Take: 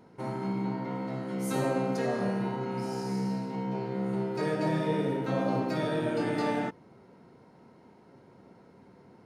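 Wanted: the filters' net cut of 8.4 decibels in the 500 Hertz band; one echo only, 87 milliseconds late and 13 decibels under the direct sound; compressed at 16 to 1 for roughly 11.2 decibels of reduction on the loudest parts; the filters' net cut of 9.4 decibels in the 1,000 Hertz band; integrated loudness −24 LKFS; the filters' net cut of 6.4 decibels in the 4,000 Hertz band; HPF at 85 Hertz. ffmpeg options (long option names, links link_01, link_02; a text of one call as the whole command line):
ffmpeg -i in.wav -af "highpass=85,equalizer=frequency=500:width_type=o:gain=-8.5,equalizer=frequency=1000:width_type=o:gain=-8.5,equalizer=frequency=4000:width_type=o:gain=-7.5,acompressor=threshold=-40dB:ratio=16,aecho=1:1:87:0.224,volume=19.5dB" out.wav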